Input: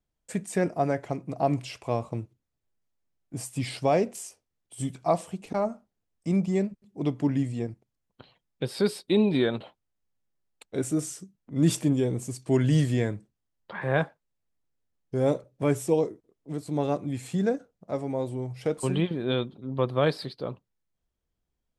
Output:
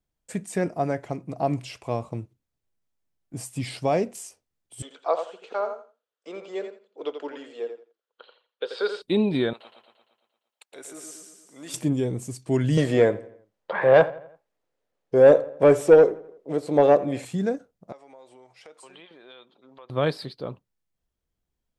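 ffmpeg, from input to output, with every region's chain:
-filter_complex "[0:a]asettb=1/sr,asplit=3[a][b][c];[a]atrim=end=4.824[d];[b]atrim=start=4.82:end=9.02,asetpts=PTS-STARTPTS,afade=t=in:d=0.004:c=qsin,afade=t=out:st=4.196:d=0.004:c=qsin,highpass=f=450:w=0.5412,highpass=f=450:w=1.3066,equalizer=f=470:t=q:w=4:g=9,equalizer=f=720:t=q:w=4:g=-4,equalizer=f=1.4k:t=q:w=4:g=9,equalizer=f=2.1k:t=q:w=4:g=-5,equalizer=f=3.3k:t=q:w=4:g=5,equalizer=f=5.4k:t=q:w=4:g=-7,lowpass=f=5.8k:w=0.5412,lowpass=f=5.8k:w=1.3066,aecho=1:1:85|170|255:0.398|0.0796|0.0159,atrim=end_sample=185220[e];[c]atrim=start=9.016[f];[d][e]acrossfade=d=0.004:c1=hsin:c2=qsin[g];[g][f]acrossfade=d=0.004:c1=qsin:c2=hsin,asettb=1/sr,asplit=3[h][i][j];[h]atrim=end=9.534[k];[i]atrim=start=9.53:end=11.74,asetpts=PTS-STARTPTS,afade=t=in:d=0.004:c=qsin,afade=t=out:st=2.206:d=0.004:c=qsin,highpass=710,acompressor=threshold=-46dB:ratio=1.5:attack=3.2:release=140:knee=1:detection=peak,aecho=1:1:115|230|345|460|575|690|805|920:0.562|0.321|0.183|0.104|0.0594|0.0338|0.0193|0.011,atrim=end_sample=97461[l];[j]atrim=start=11.736[m];[k][l]acrossfade=d=0.004:c1=hsin:c2=qsin[n];[n][m]acrossfade=d=0.004:c1=qsin:c2=hsin,asettb=1/sr,asplit=3[o][p][q];[o]atrim=end=12.774[r];[p]atrim=start=12.77:end=17.25,asetpts=PTS-STARTPTS,afade=t=in:d=0.004:c=qsin,afade=t=out:st=4.476:d=0.004:c=qsin,equalizer=f=520:t=o:w=1:g=11,asplit=2[s][t];[t]highpass=f=720:p=1,volume=14dB,asoftclip=type=tanh:threshold=-4dB[u];[s][u]amix=inputs=2:normalize=0,lowpass=f=2.6k:p=1,volume=-6dB,asplit=2[v][w];[w]adelay=84,lowpass=f=3.5k:p=1,volume=-18.5dB,asplit=2[x][y];[y]adelay=84,lowpass=f=3.5k:p=1,volume=0.49,asplit=2[z][aa];[aa]adelay=84,lowpass=f=3.5k:p=1,volume=0.49,asplit=2[ab][ac];[ac]adelay=84,lowpass=f=3.5k:p=1,volume=0.49[ad];[v][x][z][ab][ad]amix=inputs=5:normalize=0,atrim=end_sample=197568[ae];[q]atrim=start=17.246[af];[r][ae]acrossfade=d=0.004:c1=hsin:c2=qsin[ag];[ag][af]acrossfade=d=0.004:c1=qsin:c2=hsin,asettb=1/sr,asplit=3[ah][ai][aj];[ah]atrim=end=17.924[ak];[ai]atrim=start=17.92:end=19.9,asetpts=PTS-STARTPTS,afade=t=in:d=0.004:c=qsin,afade=t=out:st=1.976:d=0.004:c=qsin,highpass=700,lowpass=7k,acompressor=threshold=-48dB:ratio=3:attack=3.2:release=140:knee=1:detection=peak[al];[aj]atrim=start=19.896[am];[ak][al]acrossfade=d=0.004:c1=hsin:c2=qsin[an];[an][am]acrossfade=d=0.004:c1=qsin:c2=hsin"

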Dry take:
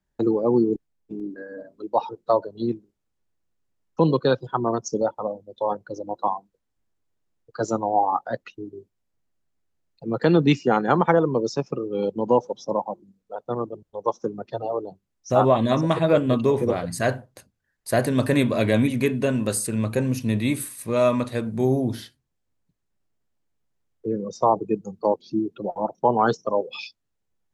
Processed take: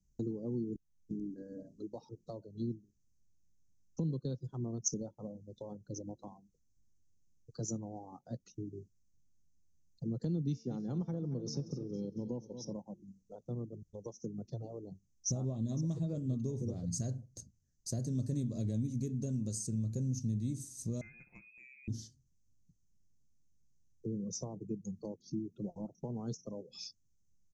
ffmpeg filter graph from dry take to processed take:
-filter_complex "[0:a]asettb=1/sr,asplit=3[a][b][c];[a]atrim=end=10.474[d];[b]atrim=start=10.47:end=12.73,asetpts=PTS-STARTPTS,afade=t=in:d=0.004:c=qsin,afade=t=out:st=2.256:d=0.004:c=qsin,highshelf=f=6.2k:t=q:w=1.5:g=-12,bandreject=f=224.6:t=h:w=4,bandreject=f=449.2:t=h:w=4,bandreject=f=673.8:t=h:w=4,bandreject=f=898.4:t=h:w=4,bandreject=f=1.123k:t=h:w=4,bandreject=f=1.3476k:t=h:w=4,bandreject=f=1.5722k:t=h:w=4,bandreject=f=1.7968k:t=h:w=4,bandreject=f=2.0214k:t=h:w=4,bandreject=f=2.246k:t=h:w=4,bandreject=f=2.4706k:t=h:w=4,bandreject=f=2.6952k:t=h:w=4,bandreject=f=2.9198k:t=h:w=4,bandreject=f=3.1444k:t=h:w=4,bandreject=f=3.369k:t=h:w=4,bandreject=f=3.5936k:t=h:w=4,bandreject=f=3.8182k:t=h:w=4,bandreject=f=4.0428k:t=h:w=4,bandreject=f=4.2674k:t=h:w=4,bandreject=f=4.492k:t=h:w=4,bandreject=f=4.7166k:t=h:w=4,bandreject=f=4.9412k:t=h:w=4,bandreject=f=5.1658k:t=h:w=4,bandreject=f=5.3904k:t=h:w=4,bandreject=f=5.615k:t=h:w=4,bandreject=f=5.8396k:t=h:w=4,bandreject=f=6.0642k:t=h:w=4,bandreject=f=6.2888k:t=h:w=4,bandreject=f=6.5134k:t=h:w=4,bandreject=f=6.738k:t=h:w=4,bandreject=f=6.9626k:t=h:w=4,bandreject=f=7.1872k:t=h:w=4,bandreject=f=7.4118k:t=h:w=4,bandreject=f=7.6364k:t=h:w=4,bandreject=f=7.861k:t=h:w=4,bandreject=f=8.0856k:t=h:w=4,bandreject=f=8.3102k:t=h:w=4,bandreject=f=8.5348k:t=h:w=4,bandreject=f=8.7594k:t=h:w=4,aecho=1:1:229|458|687|916:0.178|0.0854|0.041|0.0197,atrim=end_sample=99666[e];[c]atrim=start=12.726[f];[d][e]acrossfade=d=0.004:c1=hsin:c2=qsin[g];[g][f]acrossfade=d=0.004:c1=qsin:c2=hsin,asettb=1/sr,asplit=3[h][i][j];[h]atrim=end=21.014[k];[i]atrim=start=21.01:end=21.88,asetpts=PTS-STARTPTS,afade=t=in:d=0.004:c=qsin,afade=t=out:st=0.866:d=0.004:c=qsin,lowpass=f=2.3k:t=q:w=0.5098,lowpass=f=2.3k:t=q:w=0.6013,lowpass=f=2.3k:t=q:w=0.9,lowpass=f=2.3k:t=q:w=2.563,afreqshift=-2700,aecho=1:1:5.7:0.43,atrim=end_sample=38367[l];[j]atrim=start=21.876[m];[k][l]acrossfade=d=0.004:c1=hsin:c2=qsin[n];[n][m]acrossfade=d=0.004:c1=qsin:c2=hsin,bass=f=250:g=9,treble=f=4k:g=5,acompressor=threshold=-32dB:ratio=3,firequalizer=gain_entry='entry(160,0);entry(910,-20);entry(1500,-24);entry(2400,-24);entry(6200,9);entry(9800,-17)':delay=0.05:min_phase=1,volume=-3.5dB"

